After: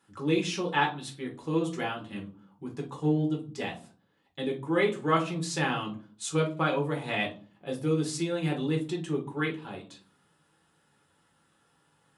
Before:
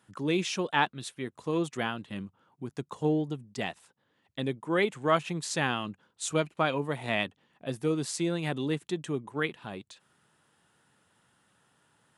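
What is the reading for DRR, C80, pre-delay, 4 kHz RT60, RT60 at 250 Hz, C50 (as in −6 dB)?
−0.5 dB, 18.0 dB, 5 ms, 0.25 s, 0.60 s, 11.5 dB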